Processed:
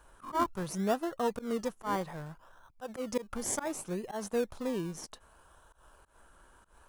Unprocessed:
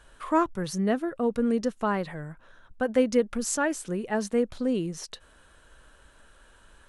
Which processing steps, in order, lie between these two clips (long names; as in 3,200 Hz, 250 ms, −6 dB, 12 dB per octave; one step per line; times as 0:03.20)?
octave-band graphic EQ 125/250/500/1,000/2,000/4,000/8,000 Hz −4/−11/−7/+5/−12/−11/−4 dB
volume swells 127 ms
in parallel at −7 dB: sample-and-hold swept by an LFO 26×, swing 60% 0.66 Hz
on the sum: low-shelf EQ 90 Hz −11 dB
level +2 dB